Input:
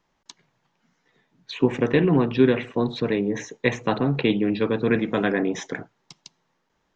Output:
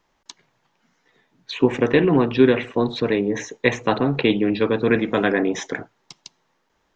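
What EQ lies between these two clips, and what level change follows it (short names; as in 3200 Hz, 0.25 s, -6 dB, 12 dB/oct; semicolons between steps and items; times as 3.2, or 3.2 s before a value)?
bell 160 Hz -5.5 dB 0.99 oct; +4.0 dB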